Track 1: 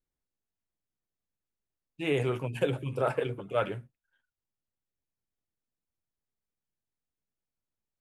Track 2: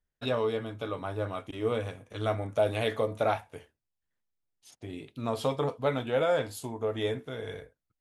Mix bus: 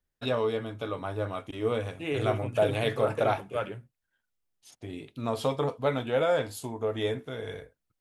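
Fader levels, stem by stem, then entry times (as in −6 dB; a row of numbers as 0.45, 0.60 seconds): −3.0, +1.0 decibels; 0.00, 0.00 seconds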